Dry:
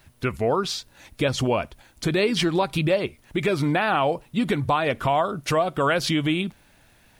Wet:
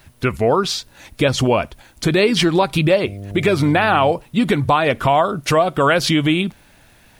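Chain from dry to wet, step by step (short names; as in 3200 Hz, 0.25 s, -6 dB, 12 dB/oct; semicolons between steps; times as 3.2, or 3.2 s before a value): 3.04–4.11 buzz 100 Hz, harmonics 7, -37 dBFS -7 dB/oct; gain +6.5 dB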